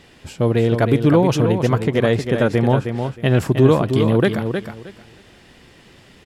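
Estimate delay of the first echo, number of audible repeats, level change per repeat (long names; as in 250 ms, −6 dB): 313 ms, 3, −14.0 dB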